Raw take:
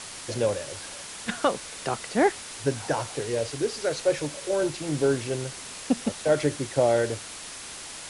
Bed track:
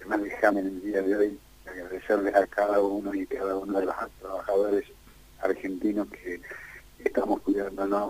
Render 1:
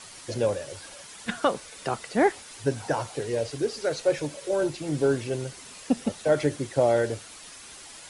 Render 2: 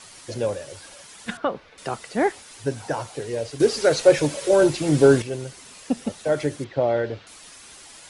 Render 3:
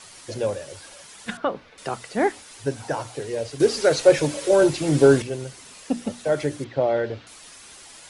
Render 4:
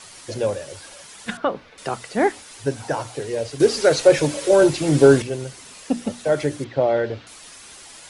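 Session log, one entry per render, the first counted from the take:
noise reduction 8 dB, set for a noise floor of -40 dBFS
1.37–1.78 s: distance through air 300 m; 3.60–5.22 s: gain +9 dB; 6.64–7.27 s: low-pass 4.1 kHz 24 dB/octave
hum notches 60/120/180/240/300 Hz
trim +2.5 dB; peak limiter -2 dBFS, peak gain reduction 1.5 dB

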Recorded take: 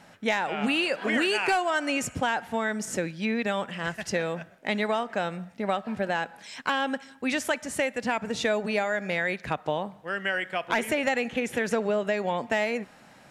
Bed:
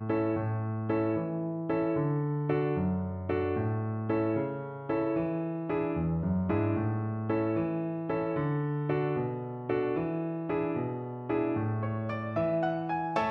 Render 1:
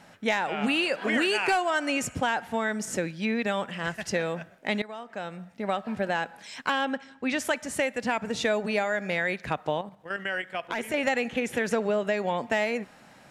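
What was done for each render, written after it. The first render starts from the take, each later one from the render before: 4.82–5.87 s: fade in, from -17.5 dB; 6.85–7.39 s: distance through air 84 m; 9.81–10.94 s: level held to a coarse grid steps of 10 dB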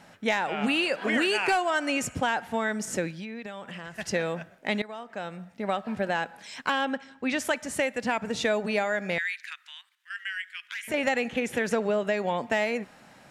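3.14–3.96 s: compression 5:1, threshold -35 dBFS; 9.18–10.88 s: steep high-pass 1.6 kHz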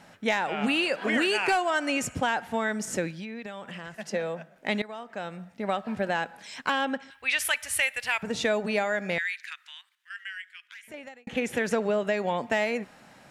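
3.95–4.56 s: rippled Chebyshev high-pass 150 Hz, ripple 6 dB; 7.10–8.23 s: FFT filter 100 Hz 0 dB, 200 Hz -28 dB, 470 Hz -13 dB, 2.6 kHz +8 dB, 7.1 kHz 0 dB, 10 kHz +11 dB; 9.67–11.27 s: fade out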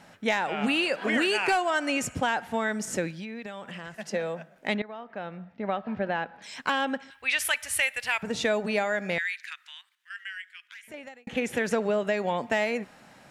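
4.74–6.42 s: distance through air 260 m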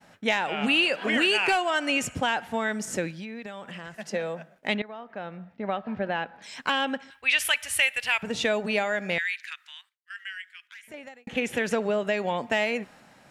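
expander -50 dBFS; dynamic bell 2.9 kHz, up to +6 dB, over -43 dBFS, Q 2.4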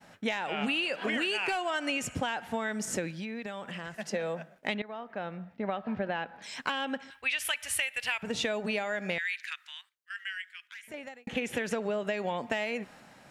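compression 5:1, threshold -28 dBFS, peak gain reduction 10 dB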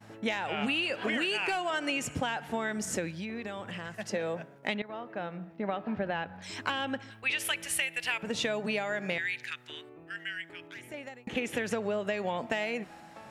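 add bed -21 dB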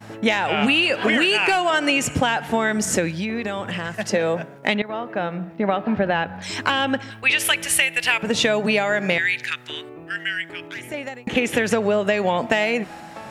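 trim +12 dB; peak limiter -3 dBFS, peak gain reduction 1.5 dB

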